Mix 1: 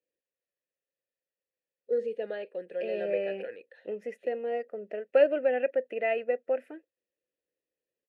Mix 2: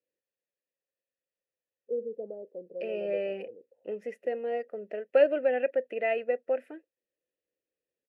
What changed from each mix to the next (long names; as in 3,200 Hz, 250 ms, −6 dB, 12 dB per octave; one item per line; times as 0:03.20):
first voice: add Gaussian smoothing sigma 14 samples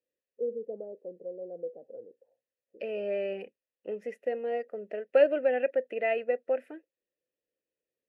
first voice: entry −1.50 s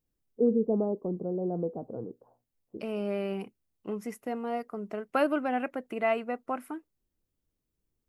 second voice −11.5 dB
master: remove formant filter e